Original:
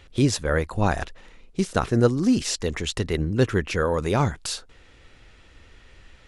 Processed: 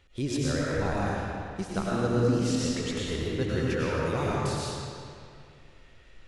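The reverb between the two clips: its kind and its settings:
comb and all-pass reverb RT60 2.4 s, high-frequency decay 0.8×, pre-delay 65 ms, DRR −6 dB
level −11.5 dB

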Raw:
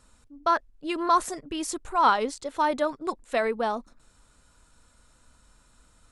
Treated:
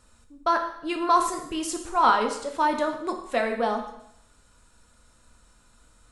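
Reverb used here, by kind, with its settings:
dense smooth reverb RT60 0.76 s, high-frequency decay 1×, DRR 3.5 dB

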